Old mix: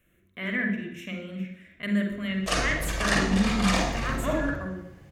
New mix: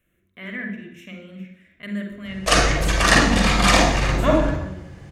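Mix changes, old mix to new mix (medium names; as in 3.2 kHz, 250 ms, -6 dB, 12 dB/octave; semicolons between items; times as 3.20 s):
speech -3.0 dB; background +10.0 dB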